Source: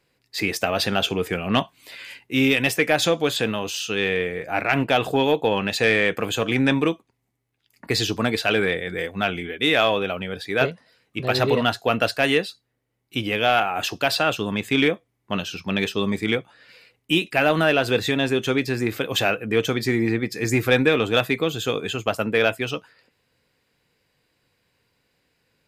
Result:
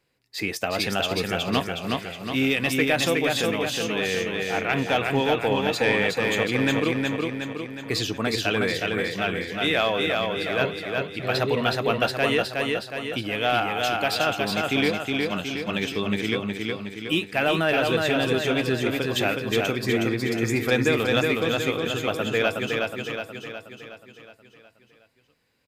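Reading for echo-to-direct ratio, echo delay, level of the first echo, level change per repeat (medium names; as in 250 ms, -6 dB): -1.5 dB, 366 ms, -3.0 dB, -5.5 dB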